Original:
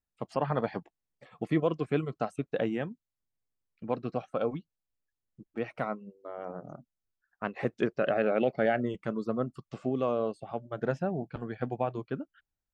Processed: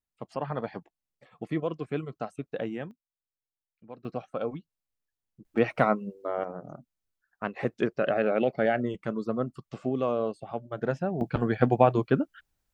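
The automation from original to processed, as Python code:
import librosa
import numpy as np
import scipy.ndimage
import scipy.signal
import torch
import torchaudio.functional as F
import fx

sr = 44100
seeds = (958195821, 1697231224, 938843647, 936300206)

y = fx.gain(x, sr, db=fx.steps((0.0, -3.0), (2.91, -13.0), (4.05, -1.5), (5.45, 10.0), (6.44, 1.5), (11.21, 11.0)))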